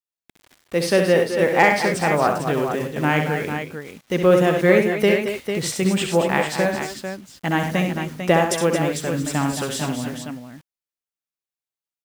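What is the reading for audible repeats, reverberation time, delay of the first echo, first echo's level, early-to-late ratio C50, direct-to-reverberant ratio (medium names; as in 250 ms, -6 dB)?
4, no reverb, 65 ms, -6.5 dB, no reverb, no reverb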